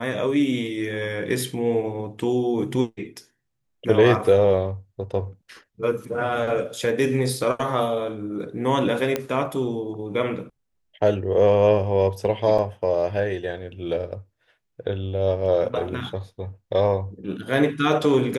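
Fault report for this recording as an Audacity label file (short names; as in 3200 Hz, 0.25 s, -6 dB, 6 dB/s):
9.160000	9.160000	pop -9 dBFS
12.580000	12.590000	gap 5 ms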